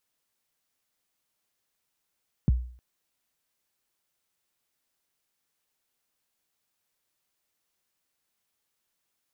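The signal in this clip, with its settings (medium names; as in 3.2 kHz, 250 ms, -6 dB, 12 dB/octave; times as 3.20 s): kick drum length 0.31 s, from 220 Hz, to 61 Hz, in 21 ms, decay 0.49 s, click off, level -15 dB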